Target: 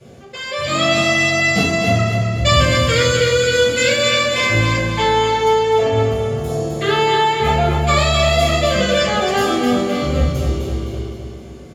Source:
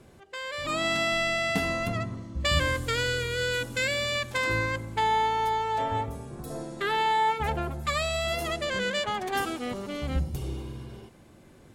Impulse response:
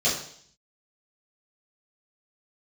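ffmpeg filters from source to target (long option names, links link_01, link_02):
-filter_complex "[0:a]aecho=1:1:258|516|774|1032|1290|1548:0.501|0.241|0.115|0.0554|0.0266|0.0128[link_01];[1:a]atrim=start_sample=2205[link_02];[link_01][link_02]afir=irnorm=-1:irlink=0,volume=-2dB"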